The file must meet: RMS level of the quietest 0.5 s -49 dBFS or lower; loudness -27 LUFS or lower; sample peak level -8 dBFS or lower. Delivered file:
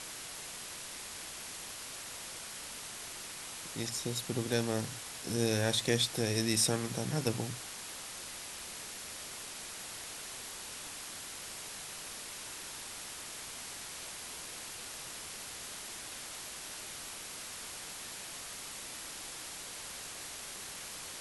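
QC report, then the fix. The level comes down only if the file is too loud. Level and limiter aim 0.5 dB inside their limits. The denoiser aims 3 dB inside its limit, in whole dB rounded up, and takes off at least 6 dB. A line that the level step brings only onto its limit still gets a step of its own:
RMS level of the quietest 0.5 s -45 dBFS: fail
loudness -38.0 LUFS: pass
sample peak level -14.0 dBFS: pass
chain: noise reduction 7 dB, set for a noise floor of -45 dBFS

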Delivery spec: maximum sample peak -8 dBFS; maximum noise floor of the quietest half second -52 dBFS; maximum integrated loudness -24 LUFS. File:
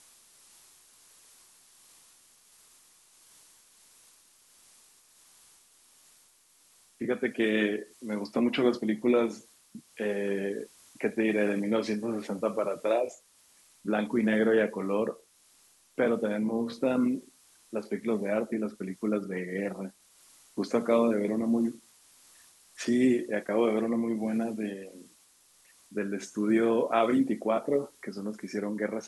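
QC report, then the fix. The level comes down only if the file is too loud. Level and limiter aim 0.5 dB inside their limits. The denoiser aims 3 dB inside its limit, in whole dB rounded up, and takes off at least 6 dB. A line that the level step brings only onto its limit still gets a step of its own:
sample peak -11.5 dBFS: pass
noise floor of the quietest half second -63 dBFS: pass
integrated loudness -29.5 LUFS: pass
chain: none needed

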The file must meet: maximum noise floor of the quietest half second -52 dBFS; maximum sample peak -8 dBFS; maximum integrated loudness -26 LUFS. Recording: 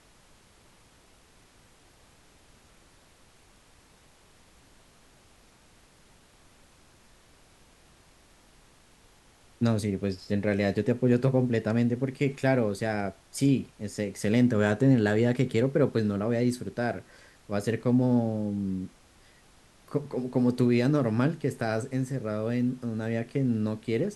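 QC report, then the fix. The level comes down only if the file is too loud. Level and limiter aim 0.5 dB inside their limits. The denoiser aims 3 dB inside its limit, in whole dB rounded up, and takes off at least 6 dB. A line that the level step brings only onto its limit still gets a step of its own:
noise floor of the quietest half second -58 dBFS: pass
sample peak -10.5 dBFS: pass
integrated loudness -27.5 LUFS: pass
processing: none needed

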